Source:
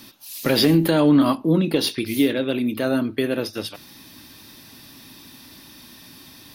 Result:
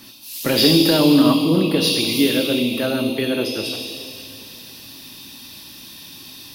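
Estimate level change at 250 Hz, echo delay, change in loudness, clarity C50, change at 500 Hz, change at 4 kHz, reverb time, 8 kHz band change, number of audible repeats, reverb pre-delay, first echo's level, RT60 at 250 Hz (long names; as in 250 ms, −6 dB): +2.5 dB, no echo audible, +3.0 dB, 2.0 dB, +2.0 dB, +8.0 dB, 2.6 s, +6.5 dB, no echo audible, 5 ms, no echo audible, 2.8 s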